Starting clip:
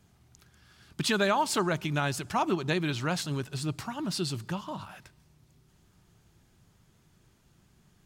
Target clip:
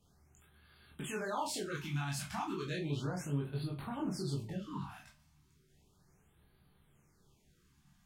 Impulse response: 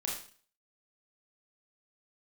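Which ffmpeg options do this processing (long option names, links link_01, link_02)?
-filter_complex "[0:a]asettb=1/sr,asplit=3[link_01][link_02][link_03];[link_01]atrim=end=2.764[link_04];[link_02]atrim=start=2.76:end=4.88,asetpts=PTS-STARTPTS,afade=type=in:duration=0.004:curve=qsin,afade=type=out:start_time=2.116:duration=0.004:curve=qsin,tiltshelf=frequency=1100:gain=6[link_05];[link_03]atrim=start=4.876[link_06];[link_04][link_05]acrossfade=duration=0.004:curve1=hsin:curve2=qsin[link_07];[link_07][link_06]acrossfade=duration=0.004:curve1=qsin:curve2=hsin,alimiter=limit=-24dB:level=0:latency=1:release=69[link_08];[1:a]atrim=start_sample=2205,asetrate=79380,aresample=44100[link_09];[link_08][link_09]afir=irnorm=-1:irlink=0,afftfilt=real='re*(1-between(b*sr/1024,410*pow(6800/410,0.5+0.5*sin(2*PI*0.34*pts/sr))/1.41,410*pow(6800/410,0.5+0.5*sin(2*PI*0.34*pts/sr))*1.41))':imag='im*(1-between(b*sr/1024,410*pow(6800/410,0.5+0.5*sin(2*PI*0.34*pts/sr))/1.41,410*pow(6800/410,0.5+0.5*sin(2*PI*0.34*pts/sr))*1.41))':win_size=1024:overlap=0.75,volume=-2dB"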